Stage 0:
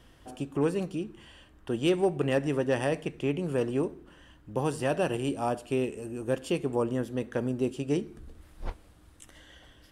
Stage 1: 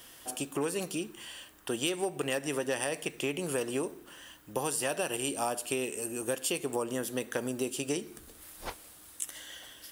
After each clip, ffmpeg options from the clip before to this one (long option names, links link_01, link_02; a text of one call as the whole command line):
ffmpeg -i in.wav -af "aemphasis=mode=production:type=riaa,acompressor=threshold=-32dB:ratio=6,volume=4dB" out.wav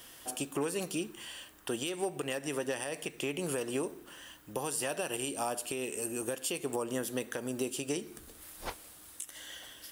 ffmpeg -i in.wav -af "alimiter=limit=-22dB:level=0:latency=1:release=227" out.wav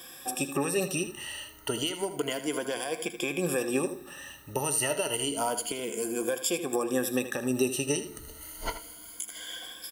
ffmpeg -i in.wav -af "afftfilt=real='re*pow(10,16/40*sin(2*PI*(1.8*log(max(b,1)*sr/1024/100)/log(2)-(0.3)*(pts-256)/sr)))':imag='im*pow(10,16/40*sin(2*PI*(1.8*log(max(b,1)*sr/1024/100)/log(2)-(0.3)*(pts-256)/sr)))':win_size=1024:overlap=0.75,aecho=1:1:79:0.266,volume=2.5dB" out.wav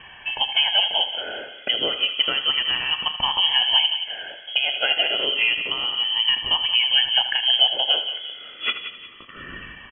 ffmpeg -i in.wav -filter_complex "[0:a]asplit=2[link_01][link_02];[link_02]adelay=178,lowpass=frequency=1700:poles=1,volume=-9dB,asplit=2[link_03][link_04];[link_04]adelay=178,lowpass=frequency=1700:poles=1,volume=0.4,asplit=2[link_05][link_06];[link_06]adelay=178,lowpass=frequency=1700:poles=1,volume=0.4,asplit=2[link_07][link_08];[link_08]adelay=178,lowpass=frequency=1700:poles=1,volume=0.4[link_09];[link_01][link_03][link_05][link_07][link_09]amix=inputs=5:normalize=0,lowpass=frequency=2900:width_type=q:width=0.5098,lowpass=frequency=2900:width_type=q:width=0.6013,lowpass=frequency=2900:width_type=q:width=0.9,lowpass=frequency=2900:width_type=q:width=2.563,afreqshift=-3400,volume=9dB" out.wav